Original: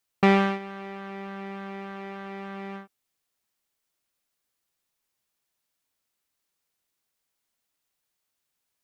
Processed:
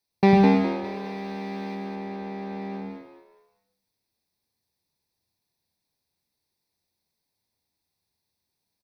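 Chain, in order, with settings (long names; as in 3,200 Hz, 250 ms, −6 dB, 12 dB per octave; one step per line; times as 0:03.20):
0:00.84–0:01.75: high-shelf EQ 2,500 Hz +10 dB
echo with shifted repeats 205 ms, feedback 32%, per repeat +76 Hz, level −5 dB
convolution reverb RT60 0.30 s, pre-delay 101 ms, DRR 9 dB
level −6 dB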